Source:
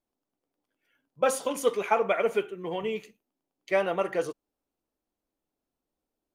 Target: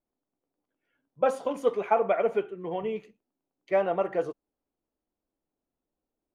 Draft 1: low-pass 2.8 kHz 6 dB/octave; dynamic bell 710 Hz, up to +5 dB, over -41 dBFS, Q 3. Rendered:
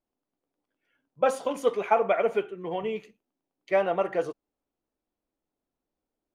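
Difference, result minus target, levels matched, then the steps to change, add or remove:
2 kHz band +3.0 dB
change: low-pass 1.2 kHz 6 dB/octave

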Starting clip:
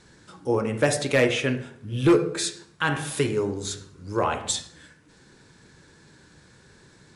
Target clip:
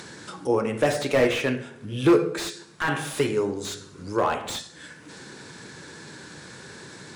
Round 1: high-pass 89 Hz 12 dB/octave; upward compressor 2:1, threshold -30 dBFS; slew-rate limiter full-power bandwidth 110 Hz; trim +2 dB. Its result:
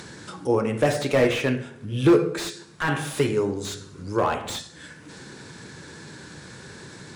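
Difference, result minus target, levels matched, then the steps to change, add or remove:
125 Hz band +3.5 dB
add after high-pass: bass shelf 140 Hz -8.5 dB

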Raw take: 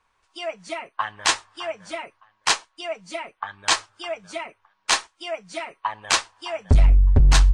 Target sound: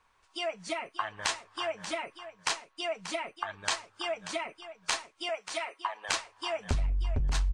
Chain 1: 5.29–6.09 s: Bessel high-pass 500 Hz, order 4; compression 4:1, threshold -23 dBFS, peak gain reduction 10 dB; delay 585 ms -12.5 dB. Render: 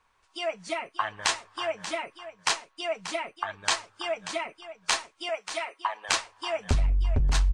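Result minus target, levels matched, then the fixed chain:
compression: peak gain reduction -5 dB
5.29–6.09 s: Bessel high-pass 500 Hz, order 4; compression 4:1, threshold -30 dBFS, peak gain reduction 15 dB; delay 585 ms -12.5 dB

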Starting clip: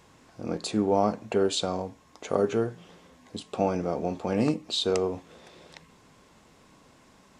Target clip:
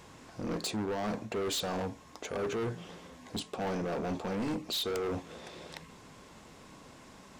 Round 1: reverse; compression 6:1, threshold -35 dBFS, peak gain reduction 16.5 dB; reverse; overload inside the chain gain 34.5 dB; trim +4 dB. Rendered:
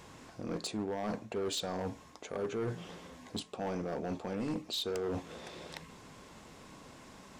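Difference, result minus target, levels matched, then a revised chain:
compression: peak gain reduction +6 dB
reverse; compression 6:1, threshold -27.5 dBFS, peak gain reduction 10 dB; reverse; overload inside the chain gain 34.5 dB; trim +4 dB

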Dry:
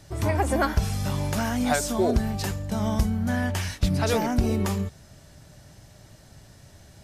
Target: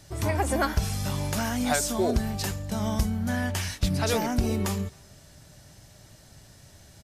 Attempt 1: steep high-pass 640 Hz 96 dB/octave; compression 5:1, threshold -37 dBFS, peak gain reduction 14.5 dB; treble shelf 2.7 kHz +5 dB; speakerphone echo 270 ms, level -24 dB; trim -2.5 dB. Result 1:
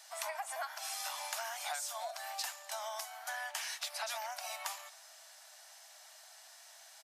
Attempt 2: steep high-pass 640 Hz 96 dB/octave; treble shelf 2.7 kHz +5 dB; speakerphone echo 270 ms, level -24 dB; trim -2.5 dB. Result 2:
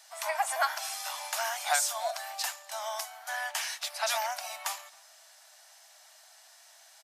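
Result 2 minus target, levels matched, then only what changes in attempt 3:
500 Hz band -3.5 dB
remove: steep high-pass 640 Hz 96 dB/octave

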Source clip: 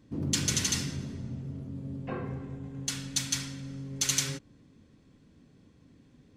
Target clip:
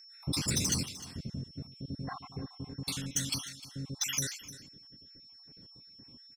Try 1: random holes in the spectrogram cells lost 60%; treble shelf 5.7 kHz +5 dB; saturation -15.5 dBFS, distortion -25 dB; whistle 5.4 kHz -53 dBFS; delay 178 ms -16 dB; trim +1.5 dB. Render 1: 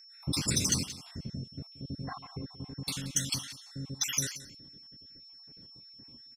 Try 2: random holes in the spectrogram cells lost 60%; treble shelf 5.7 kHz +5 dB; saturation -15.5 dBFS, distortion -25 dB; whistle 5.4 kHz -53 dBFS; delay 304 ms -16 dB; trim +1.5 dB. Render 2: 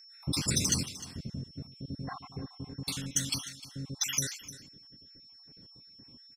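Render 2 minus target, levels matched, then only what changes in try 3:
saturation: distortion -12 dB
change: saturation -24 dBFS, distortion -14 dB

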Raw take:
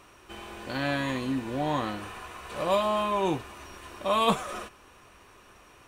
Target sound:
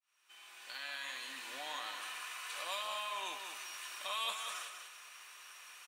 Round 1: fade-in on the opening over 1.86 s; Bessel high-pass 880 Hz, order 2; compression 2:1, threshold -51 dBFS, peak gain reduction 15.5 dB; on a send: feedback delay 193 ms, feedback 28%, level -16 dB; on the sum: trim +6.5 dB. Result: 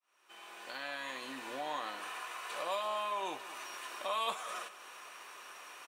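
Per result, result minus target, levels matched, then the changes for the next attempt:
echo-to-direct -9 dB; 1 kHz band +4.0 dB
change: feedback delay 193 ms, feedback 28%, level -7 dB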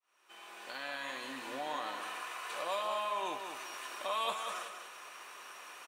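1 kHz band +4.0 dB
change: Bessel high-pass 2.4 kHz, order 2

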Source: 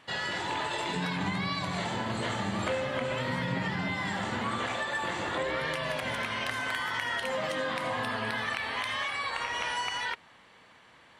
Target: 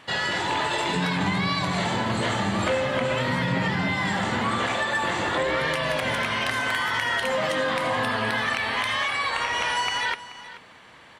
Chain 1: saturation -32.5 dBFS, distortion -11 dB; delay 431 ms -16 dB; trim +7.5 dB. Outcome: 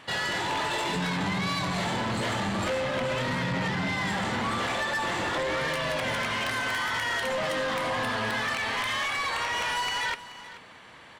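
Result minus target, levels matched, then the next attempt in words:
saturation: distortion +14 dB
saturation -21 dBFS, distortion -25 dB; delay 431 ms -16 dB; trim +7.5 dB

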